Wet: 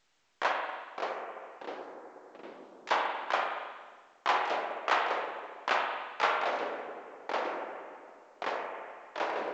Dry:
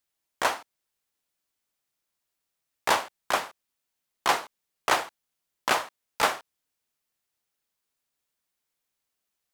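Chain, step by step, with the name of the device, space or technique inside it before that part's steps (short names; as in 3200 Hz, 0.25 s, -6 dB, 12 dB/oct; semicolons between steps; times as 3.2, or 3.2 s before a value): 0.52–2.91 differentiator; spring tank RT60 1.4 s, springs 45/58 ms, chirp 50 ms, DRR 1 dB; echoes that change speed 0.39 s, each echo -6 st, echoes 3, each echo -6 dB; telephone (BPF 360–3400 Hz; gain -4.5 dB; A-law 128 kbps 16000 Hz)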